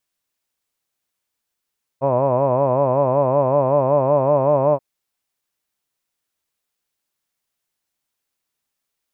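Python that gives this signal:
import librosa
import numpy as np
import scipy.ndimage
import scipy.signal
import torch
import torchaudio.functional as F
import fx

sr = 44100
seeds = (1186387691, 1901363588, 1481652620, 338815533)

y = fx.formant_vowel(sr, seeds[0], length_s=2.78, hz=130.0, glide_st=1.5, vibrato_hz=5.3, vibrato_st=1.2, f1_hz=590.0, f2_hz=1000.0, f3_hz=2500.0)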